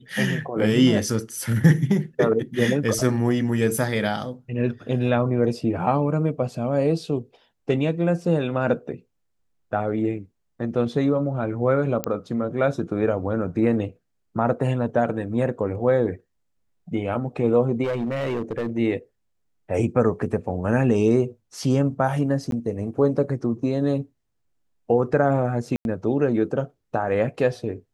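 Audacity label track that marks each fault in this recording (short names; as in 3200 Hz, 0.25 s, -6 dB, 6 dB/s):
12.040000	12.040000	pop -8 dBFS
17.830000	18.780000	clipped -21.5 dBFS
22.510000	22.520000	gap 12 ms
25.760000	25.850000	gap 91 ms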